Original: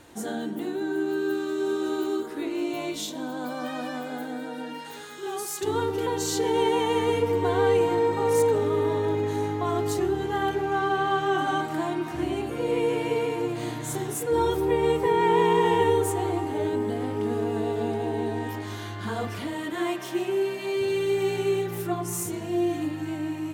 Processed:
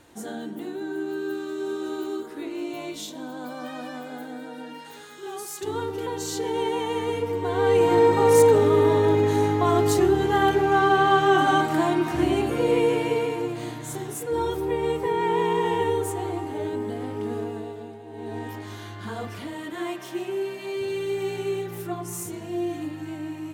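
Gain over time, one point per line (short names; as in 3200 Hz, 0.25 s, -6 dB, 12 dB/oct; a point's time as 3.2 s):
7.45 s -3 dB
7.98 s +6 dB
12.51 s +6 dB
13.78 s -2.5 dB
17.39 s -2.5 dB
18.04 s -15 dB
18.35 s -3 dB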